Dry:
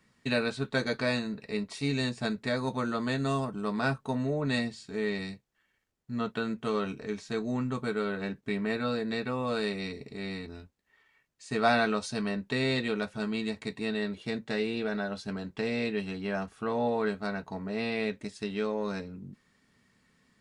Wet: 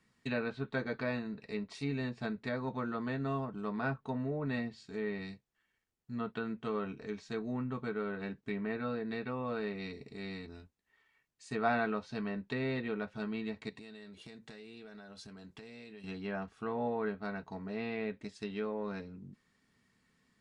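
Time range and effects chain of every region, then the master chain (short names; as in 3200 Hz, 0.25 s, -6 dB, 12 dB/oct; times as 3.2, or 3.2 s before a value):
13.69–16.04 compressor 12:1, threshold -41 dBFS + high shelf 4100 Hz +5.5 dB
whole clip: notch 570 Hz, Q 12; treble ducked by the level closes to 2200 Hz, closed at -27 dBFS; gain -5.5 dB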